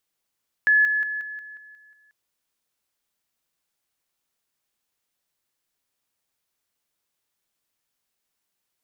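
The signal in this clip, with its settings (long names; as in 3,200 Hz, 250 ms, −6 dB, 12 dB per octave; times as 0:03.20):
level staircase 1,710 Hz −14 dBFS, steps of −6 dB, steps 8, 0.18 s 0.00 s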